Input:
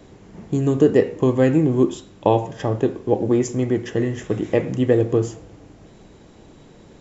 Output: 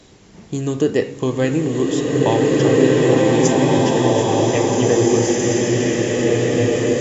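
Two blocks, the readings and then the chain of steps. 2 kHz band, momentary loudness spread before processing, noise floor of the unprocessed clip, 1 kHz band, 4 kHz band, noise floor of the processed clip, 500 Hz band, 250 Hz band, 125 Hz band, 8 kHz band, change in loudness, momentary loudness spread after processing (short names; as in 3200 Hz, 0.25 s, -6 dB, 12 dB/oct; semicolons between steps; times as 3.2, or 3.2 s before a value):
+9.5 dB, 7 LU, -48 dBFS, +6.0 dB, +14.0 dB, -44 dBFS, +4.5 dB, +4.0 dB, +3.5 dB, n/a, +3.5 dB, 6 LU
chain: bell 5300 Hz +12 dB 2.5 oct; bloom reverb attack 2.03 s, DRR -6.5 dB; gain -3 dB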